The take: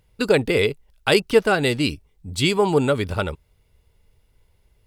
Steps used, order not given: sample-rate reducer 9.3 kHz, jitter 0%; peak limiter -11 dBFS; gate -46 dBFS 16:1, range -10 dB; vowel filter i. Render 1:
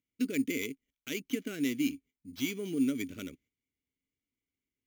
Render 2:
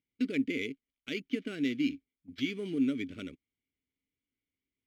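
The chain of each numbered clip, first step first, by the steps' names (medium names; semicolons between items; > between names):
gate > peak limiter > vowel filter > sample-rate reducer; sample-rate reducer > peak limiter > vowel filter > gate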